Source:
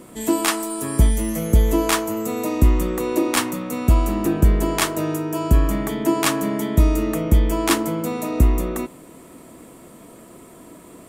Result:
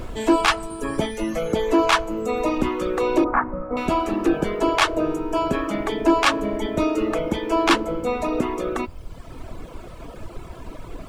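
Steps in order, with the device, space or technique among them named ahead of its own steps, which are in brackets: aircraft cabin announcement (BPF 360–3600 Hz; soft clip -15.5 dBFS, distortion -18 dB; brown noise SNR 12 dB); 3.24–3.77 steep low-pass 1700 Hz 36 dB/oct; reverb removal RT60 1.3 s; notch 1900 Hz, Q 11; gain +8 dB

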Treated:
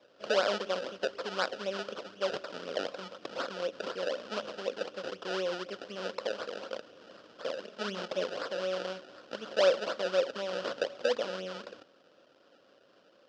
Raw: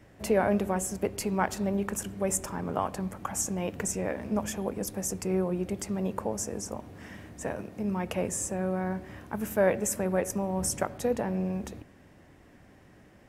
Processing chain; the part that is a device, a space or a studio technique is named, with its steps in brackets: 7.64–8.24 comb 4.8 ms, depth 82%; circuit-bent sampling toy (decimation with a swept rate 28×, swing 100% 4 Hz; speaker cabinet 410–5500 Hz, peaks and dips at 530 Hz +10 dB, 850 Hz -7 dB, 1400 Hz +7 dB, 2100 Hz -8 dB, 3000 Hz +7 dB, 5000 Hz +6 dB); gain -4.5 dB

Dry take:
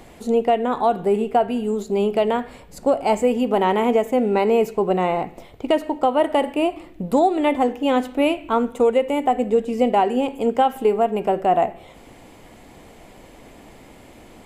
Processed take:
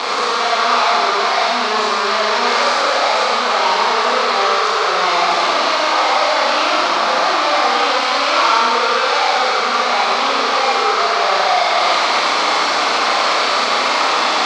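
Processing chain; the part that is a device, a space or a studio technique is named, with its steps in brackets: spectral swells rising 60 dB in 0.65 s; 9.08–9.55 low shelf 460 Hz -7 dB; home computer beeper (infinite clipping; speaker cabinet 770–5200 Hz, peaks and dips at 1200 Hz +8 dB, 1800 Hz -4 dB, 2900 Hz -4 dB, 4300 Hz +4 dB); Schroeder reverb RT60 2 s, combs from 29 ms, DRR -4.5 dB; gain +2 dB

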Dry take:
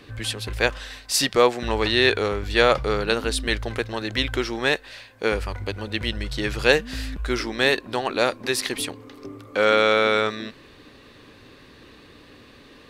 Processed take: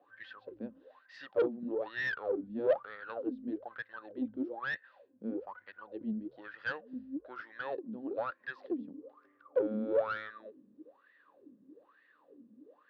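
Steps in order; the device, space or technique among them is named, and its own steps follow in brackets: wah-wah guitar rig (wah 1.1 Hz 210–1900 Hz, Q 14; tube stage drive 27 dB, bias 0.3; speaker cabinet 99–4300 Hz, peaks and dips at 190 Hz +5 dB, 300 Hz +8 dB, 540 Hz +8 dB, 2200 Hz -8 dB)

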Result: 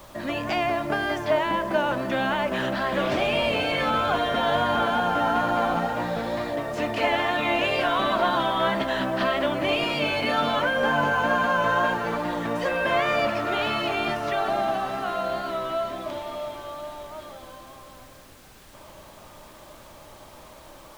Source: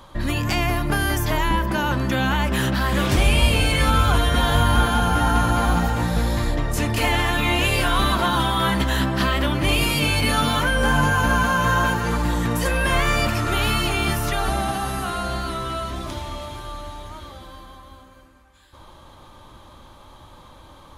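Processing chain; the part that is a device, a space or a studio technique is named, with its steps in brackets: horn gramophone (BPF 230–3500 Hz; bell 630 Hz +11.5 dB 0.31 oct; wow and flutter 25 cents; pink noise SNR 24 dB); gain -3 dB

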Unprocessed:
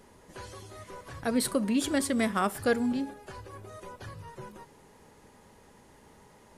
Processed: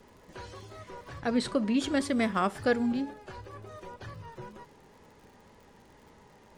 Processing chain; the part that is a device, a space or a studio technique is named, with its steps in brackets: lo-fi chain (LPF 5800 Hz 12 dB/oct; wow and flutter; crackle 86/s -50 dBFS); 1.2–1.8 LPF 8400 Hz 12 dB/oct

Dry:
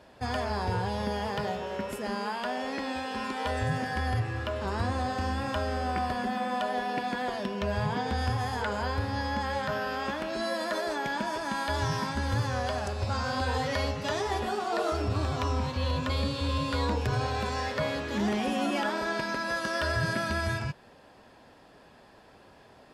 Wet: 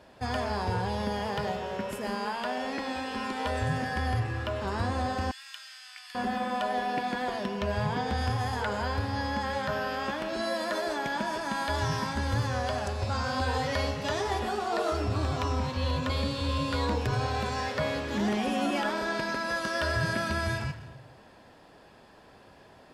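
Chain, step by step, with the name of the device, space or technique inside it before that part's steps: saturated reverb return (on a send at -8 dB: reverb RT60 0.85 s, pre-delay 83 ms + soft clip -32 dBFS, distortion -9 dB); 5.31–6.15 on the sum: Bessel high-pass 2900 Hz, order 4

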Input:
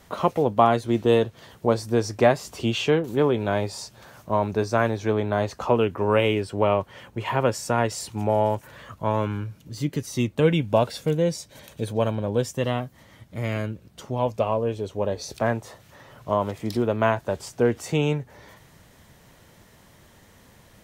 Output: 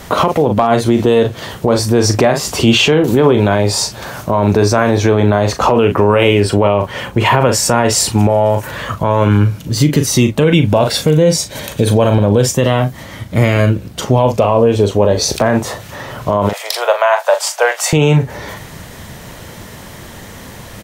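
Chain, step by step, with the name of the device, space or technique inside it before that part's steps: 16.49–17.93 steep high-pass 570 Hz 48 dB/oct; doubler 39 ms -10 dB; loud club master (compressor 2:1, threshold -23 dBFS, peak gain reduction 7 dB; hard clip -11.5 dBFS, distortion -36 dB; maximiser +21 dB); gain -1 dB

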